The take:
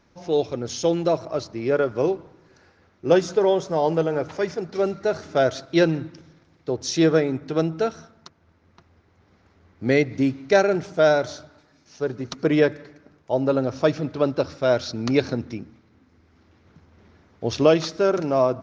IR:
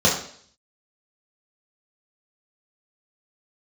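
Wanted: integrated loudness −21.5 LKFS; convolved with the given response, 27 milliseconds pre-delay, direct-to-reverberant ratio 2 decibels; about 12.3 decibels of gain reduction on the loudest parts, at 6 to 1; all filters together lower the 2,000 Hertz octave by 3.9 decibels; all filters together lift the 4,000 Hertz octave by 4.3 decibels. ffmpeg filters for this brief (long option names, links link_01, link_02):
-filter_complex "[0:a]equalizer=frequency=2000:width_type=o:gain=-7,equalizer=frequency=4000:width_type=o:gain=7,acompressor=threshold=-26dB:ratio=6,asplit=2[link_01][link_02];[1:a]atrim=start_sample=2205,adelay=27[link_03];[link_02][link_03]afir=irnorm=-1:irlink=0,volume=-21dB[link_04];[link_01][link_04]amix=inputs=2:normalize=0,volume=6dB"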